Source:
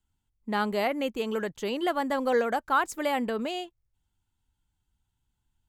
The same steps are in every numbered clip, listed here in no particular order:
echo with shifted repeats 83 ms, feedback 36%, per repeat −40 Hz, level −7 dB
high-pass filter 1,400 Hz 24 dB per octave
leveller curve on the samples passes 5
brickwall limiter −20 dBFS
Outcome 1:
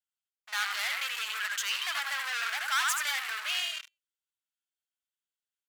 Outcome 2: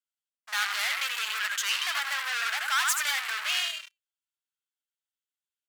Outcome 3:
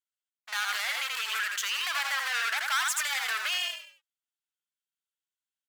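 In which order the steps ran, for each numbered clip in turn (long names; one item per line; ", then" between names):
echo with shifted repeats, then leveller curve on the samples, then brickwall limiter, then high-pass filter
brickwall limiter, then echo with shifted repeats, then leveller curve on the samples, then high-pass filter
leveller curve on the samples, then high-pass filter, then echo with shifted repeats, then brickwall limiter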